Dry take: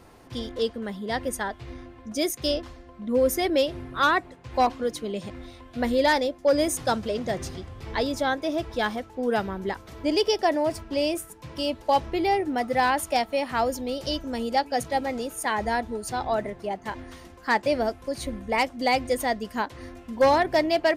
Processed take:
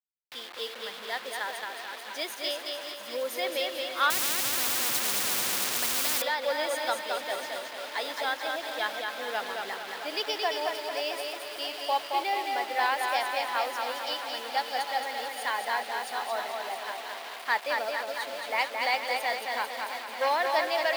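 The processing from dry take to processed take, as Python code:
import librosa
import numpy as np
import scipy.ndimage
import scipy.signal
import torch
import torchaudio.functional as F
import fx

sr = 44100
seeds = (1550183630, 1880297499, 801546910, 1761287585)

y = fx.reverse_delay_fb(x, sr, ms=335, feedback_pct=74, wet_db=-10.5)
y = fx.quant_dither(y, sr, seeds[0], bits=6, dither='none')
y = scipy.signal.sosfilt(scipy.signal.butter(2, 800.0, 'highpass', fs=sr, output='sos'), y)
y = fx.high_shelf_res(y, sr, hz=5000.0, db=-6.5, q=1.5)
y = fx.echo_feedback(y, sr, ms=221, feedback_pct=45, wet_db=-4.0)
y = fx.spectral_comp(y, sr, ratio=10.0, at=(4.1, 6.22))
y = y * librosa.db_to_amplitude(-3.0)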